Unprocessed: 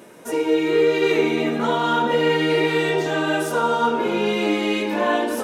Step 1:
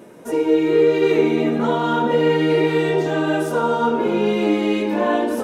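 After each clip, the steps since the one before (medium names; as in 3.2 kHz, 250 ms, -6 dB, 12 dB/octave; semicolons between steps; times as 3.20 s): tilt shelf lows +4.5 dB, about 860 Hz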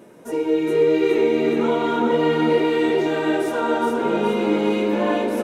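feedback delay 417 ms, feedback 49%, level -3.5 dB; trim -3.5 dB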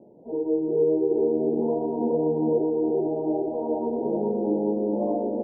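steep low-pass 860 Hz 72 dB/octave; trim -4.5 dB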